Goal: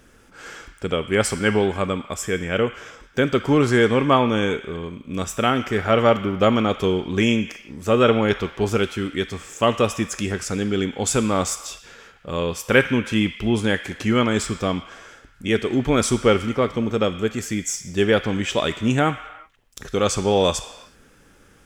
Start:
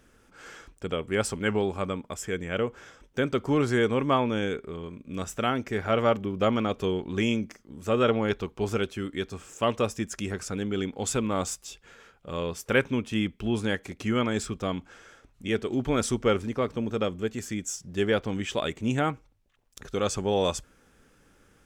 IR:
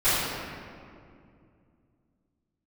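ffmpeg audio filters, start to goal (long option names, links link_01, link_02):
-filter_complex "[0:a]asplit=2[link_01][link_02];[link_02]highpass=1500[link_03];[1:a]atrim=start_sample=2205,afade=type=out:start_time=0.43:duration=0.01,atrim=end_sample=19404[link_04];[link_03][link_04]afir=irnorm=-1:irlink=0,volume=-22dB[link_05];[link_01][link_05]amix=inputs=2:normalize=0,volume=7dB"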